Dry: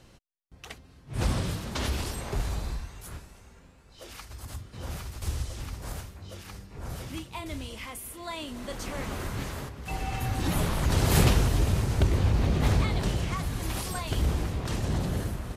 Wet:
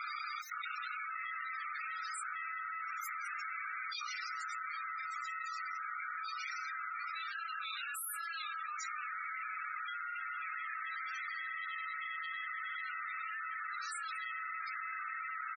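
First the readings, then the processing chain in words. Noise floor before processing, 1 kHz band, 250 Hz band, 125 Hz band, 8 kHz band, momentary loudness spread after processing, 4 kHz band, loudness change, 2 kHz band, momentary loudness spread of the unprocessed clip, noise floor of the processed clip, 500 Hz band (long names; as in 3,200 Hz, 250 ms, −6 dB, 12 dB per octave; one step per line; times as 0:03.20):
−55 dBFS, −1.0 dB, below −40 dB, below −40 dB, −11.5 dB, 1 LU, −10.5 dB, −10.0 dB, +1.5 dB, 18 LU, −43 dBFS, below −40 dB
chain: thirty-one-band graphic EQ 1,600 Hz +4 dB, 2,500 Hz −7 dB, 10,000 Hz −7 dB
ring modulation 650 Hz
upward compression, threshold −34 dBFS
tube saturation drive 35 dB, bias 0.55
Chebyshev high-pass filter 1,200 Hz, order 8
double-tracking delay 33 ms −6 dB
single-tap delay 199 ms −11 dB
spectral peaks only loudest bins 16
envelope flattener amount 100%
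level +2 dB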